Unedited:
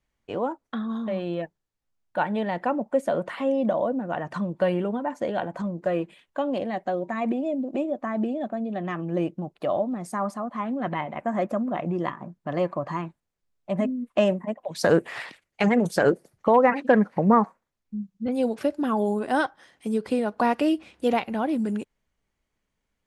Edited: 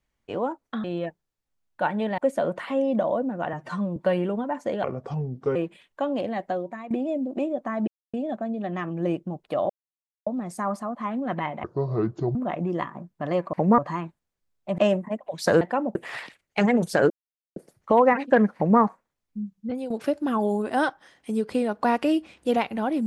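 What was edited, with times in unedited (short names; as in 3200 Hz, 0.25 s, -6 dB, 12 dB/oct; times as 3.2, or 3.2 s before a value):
0.84–1.2 cut
2.54–2.88 move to 14.98
4.23–4.52 stretch 1.5×
5.39–5.93 speed 75%
6.87–7.28 fade out, to -16.5 dB
8.25 insert silence 0.26 s
9.81 insert silence 0.57 s
11.18–11.61 speed 60%
13.79–14.15 cut
16.13 insert silence 0.46 s
17.12–17.37 copy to 12.79
18.08–18.47 fade out equal-power, to -14.5 dB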